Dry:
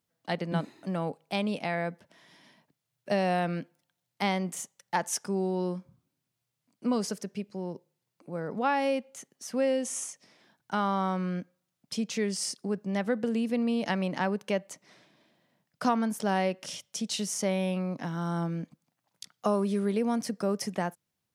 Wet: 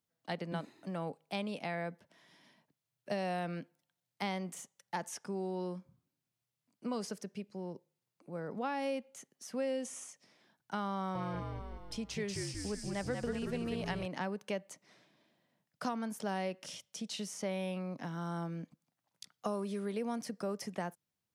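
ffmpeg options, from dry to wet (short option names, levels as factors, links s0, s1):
-filter_complex "[0:a]asettb=1/sr,asplit=3[s0][s1][s2];[s0]atrim=end=10.964[s3];[s1]atrim=start=10.96:end=14.06,asetpts=PTS-STARTPTS,afade=t=in:d=0.004:c=qsin,afade=t=out:st=3.096:d=0.004:c=qsin,asplit=9[s4][s5][s6][s7][s8][s9][s10][s11][s12];[s5]adelay=187,afreqshift=-60,volume=0.631[s13];[s6]adelay=374,afreqshift=-120,volume=0.359[s14];[s7]adelay=561,afreqshift=-180,volume=0.204[s15];[s8]adelay=748,afreqshift=-240,volume=0.117[s16];[s9]adelay=935,afreqshift=-300,volume=0.0668[s17];[s10]adelay=1122,afreqshift=-360,volume=0.038[s18];[s11]adelay=1309,afreqshift=-420,volume=0.0216[s19];[s12]adelay=1496,afreqshift=-480,volume=0.0123[s20];[s4][s13][s14][s15][s16][s17][s18][s19][s20]amix=inputs=9:normalize=0,atrim=end_sample=136710[s21];[s2]atrim=start=14.056[s22];[s3][s21]acrossfade=d=0.004:c1=hsin:c2=qsin[s23];[s23][s22]acrossfade=d=0.004:c1=qsin:c2=hsin,acrossover=split=420|4000[s24][s25][s26];[s24]acompressor=threshold=0.0251:ratio=4[s27];[s25]acompressor=threshold=0.0355:ratio=4[s28];[s26]acompressor=threshold=0.01:ratio=4[s29];[s27][s28][s29]amix=inputs=3:normalize=0,volume=0.501"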